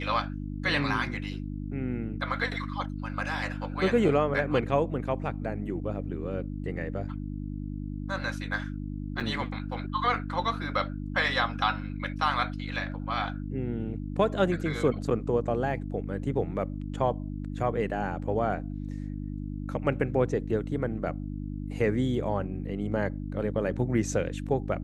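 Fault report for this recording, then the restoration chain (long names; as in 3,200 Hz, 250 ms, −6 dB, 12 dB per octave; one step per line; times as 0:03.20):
mains hum 50 Hz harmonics 6 −35 dBFS
0:09.20: drop-out 4.8 ms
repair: hum removal 50 Hz, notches 6
repair the gap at 0:09.20, 4.8 ms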